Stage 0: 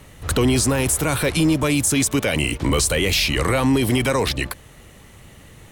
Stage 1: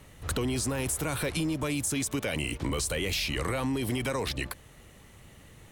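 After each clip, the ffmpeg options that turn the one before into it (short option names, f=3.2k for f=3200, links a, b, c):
-af "acompressor=threshold=-19dB:ratio=6,volume=-7.5dB"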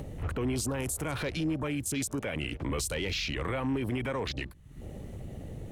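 -af "acompressor=mode=upward:threshold=-37dB:ratio=2.5,alimiter=level_in=5.5dB:limit=-24dB:level=0:latency=1:release=349,volume=-5.5dB,afwtdn=0.00447,volume=6dB"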